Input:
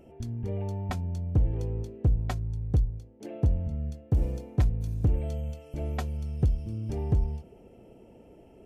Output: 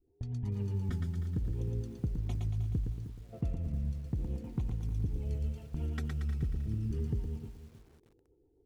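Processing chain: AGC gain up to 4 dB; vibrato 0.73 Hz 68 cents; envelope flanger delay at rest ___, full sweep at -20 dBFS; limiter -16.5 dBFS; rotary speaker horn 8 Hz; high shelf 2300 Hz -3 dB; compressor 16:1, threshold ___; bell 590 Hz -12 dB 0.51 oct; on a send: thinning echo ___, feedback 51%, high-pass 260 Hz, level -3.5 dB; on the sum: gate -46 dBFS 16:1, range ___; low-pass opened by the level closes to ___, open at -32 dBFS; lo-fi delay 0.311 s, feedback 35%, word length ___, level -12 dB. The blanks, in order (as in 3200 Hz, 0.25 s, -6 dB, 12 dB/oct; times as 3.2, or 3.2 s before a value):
2.7 ms, -30 dBFS, 0.115 s, -14 dB, 500 Hz, 9-bit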